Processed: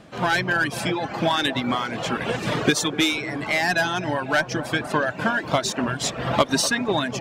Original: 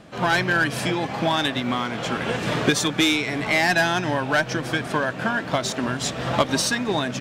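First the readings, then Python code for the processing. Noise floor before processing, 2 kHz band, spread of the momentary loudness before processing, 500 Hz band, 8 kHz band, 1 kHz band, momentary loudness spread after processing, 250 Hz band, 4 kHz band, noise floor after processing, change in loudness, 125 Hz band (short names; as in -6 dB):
-33 dBFS, -0.5 dB, 6 LU, 0.0 dB, +0.5 dB, 0.0 dB, 5 LU, -1.0 dB, -0.5 dB, -36 dBFS, -0.5 dB, -1.5 dB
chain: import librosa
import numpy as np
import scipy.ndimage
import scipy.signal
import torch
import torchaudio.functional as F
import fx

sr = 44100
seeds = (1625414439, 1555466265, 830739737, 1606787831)

y = fx.dereverb_blind(x, sr, rt60_s=0.8)
y = fx.rider(y, sr, range_db=10, speed_s=2.0)
y = fx.echo_wet_bandpass(y, sr, ms=247, feedback_pct=63, hz=570.0, wet_db=-12.0)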